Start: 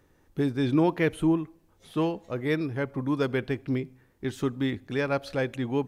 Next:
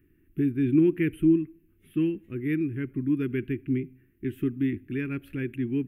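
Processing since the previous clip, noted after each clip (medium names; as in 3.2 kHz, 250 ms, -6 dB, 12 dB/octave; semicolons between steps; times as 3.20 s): FFT filter 190 Hz 0 dB, 360 Hz +4 dB, 540 Hz -26 dB, 840 Hz -29 dB, 1.6 kHz -7 dB, 2.7 kHz -1 dB, 4.1 kHz -27 dB, 6.4 kHz -27 dB, 12 kHz +1 dB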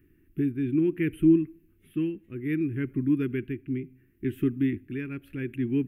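tremolo 0.68 Hz, depth 50%; trim +2 dB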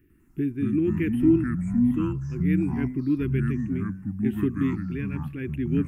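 ever faster or slower copies 100 ms, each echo -5 st, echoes 3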